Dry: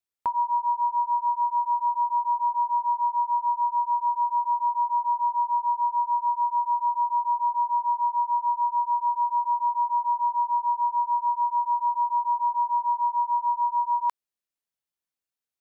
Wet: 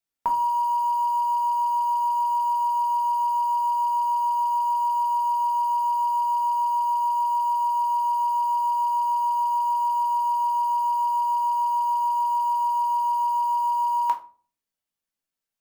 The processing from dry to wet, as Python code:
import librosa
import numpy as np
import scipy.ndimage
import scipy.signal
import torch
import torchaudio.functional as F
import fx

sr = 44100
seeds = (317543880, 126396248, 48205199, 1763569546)

p1 = fx.quant_dither(x, sr, seeds[0], bits=6, dither='none')
p2 = x + F.gain(torch.from_numpy(p1), -12.0).numpy()
y = fx.room_shoebox(p2, sr, seeds[1], volume_m3=280.0, walls='furnished', distance_m=1.6)